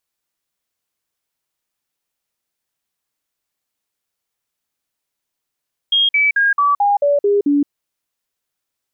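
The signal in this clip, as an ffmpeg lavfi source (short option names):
-f lavfi -i "aevalsrc='0.282*clip(min(mod(t,0.22),0.17-mod(t,0.22))/0.005,0,1)*sin(2*PI*3250*pow(2,-floor(t/0.22)/2)*mod(t,0.22))':d=1.76:s=44100"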